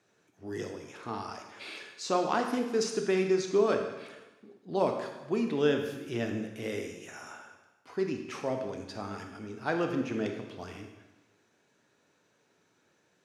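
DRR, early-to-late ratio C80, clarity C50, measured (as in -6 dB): 4.0 dB, 7.5 dB, 6.0 dB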